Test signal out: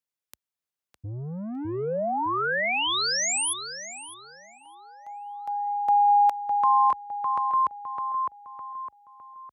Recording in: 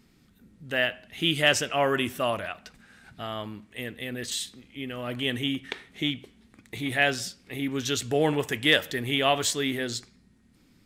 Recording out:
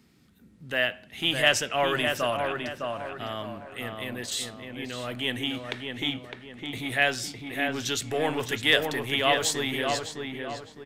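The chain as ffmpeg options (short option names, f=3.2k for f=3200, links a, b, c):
-filter_complex "[0:a]highpass=f=55:w=0.5412,highpass=f=55:w=1.3066,acrossover=split=490|4500[a][b][c];[a]asoftclip=type=tanh:threshold=-32.5dB[d];[d][b][c]amix=inputs=3:normalize=0,asplit=2[e][f];[f]adelay=608,lowpass=f=2.2k:p=1,volume=-4dB,asplit=2[g][h];[h]adelay=608,lowpass=f=2.2k:p=1,volume=0.42,asplit=2[i][j];[j]adelay=608,lowpass=f=2.2k:p=1,volume=0.42,asplit=2[k][l];[l]adelay=608,lowpass=f=2.2k:p=1,volume=0.42,asplit=2[m][n];[n]adelay=608,lowpass=f=2.2k:p=1,volume=0.42[o];[e][g][i][k][m][o]amix=inputs=6:normalize=0"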